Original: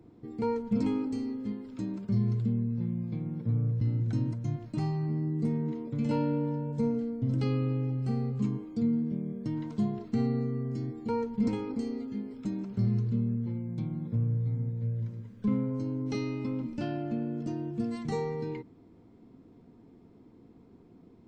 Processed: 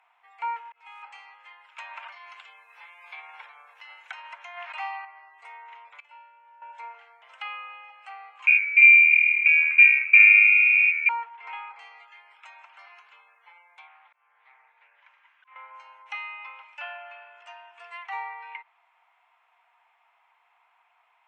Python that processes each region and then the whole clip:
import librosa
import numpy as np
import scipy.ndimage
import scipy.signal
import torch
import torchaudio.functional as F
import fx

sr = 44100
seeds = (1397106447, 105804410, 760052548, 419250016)

y = fx.chain(x, sr, fx.cvsd(bps=64000),
    fx.comb(ms=2.4, depth=0.48),
    fx.auto_swell(attack_ms=737.0), at=(0.56, 1.03))
y = fx.chain(y, sr, fx.high_shelf(hz=3800.0, db=11.0),
    fx.env_flatten(amount_pct=70), at=(1.78, 5.05))
y = fx.chain(y, sr, fx.high_shelf(hz=4600.0, db=-6.5),
    fx.level_steps(step_db=23), at=(6.0, 6.62))
y = fx.chain(y, sr, fx.freq_invert(carrier_hz=2600),
    fx.tilt_shelf(db=-3.0, hz=1100.0), at=(8.47, 11.09))
y = fx.chain(y, sr, fx.auto_swell(attack_ms=371.0),
    fx.bandpass_edges(low_hz=610.0, high_hz=4600.0),
    fx.doppler_dist(depth_ms=0.19), at=(13.87, 15.56))
y = scipy.signal.sosfilt(scipy.signal.butter(8, 790.0, 'highpass', fs=sr, output='sos'), y)
y = fx.env_lowpass_down(y, sr, base_hz=2900.0, full_db=-45.5)
y = fx.high_shelf_res(y, sr, hz=3500.0, db=-9.5, q=3.0)
y = y * librosa.db_to_amplitude(8.0)